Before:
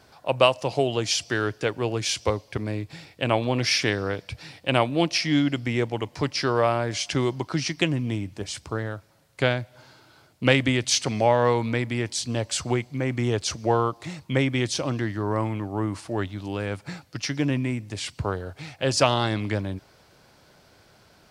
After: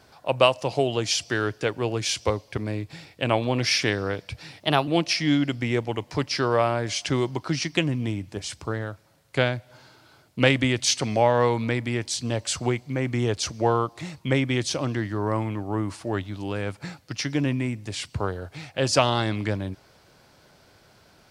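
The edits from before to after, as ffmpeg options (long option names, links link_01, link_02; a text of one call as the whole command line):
ffmpeg -i in.wav -filter_complex "[0:a]asplit=3[link_01][link_02][link_03];[link_01]atrim=end=4.604[link_04];[link_02]atrim=start=4.6:end=4.92,asetpts=PTS-STARTPTS,asetrate=51156,aresample=44100[link_05];[link_03]atrim=start=4.916[link_06];[link_04][link_05]acrossfade=duration=0.004:curve1=hsin:curve2=hsin[link_07];[link_07][link_06]acrossfade=duration=0.004:curve1=hsin:curve2=hsin" out.wav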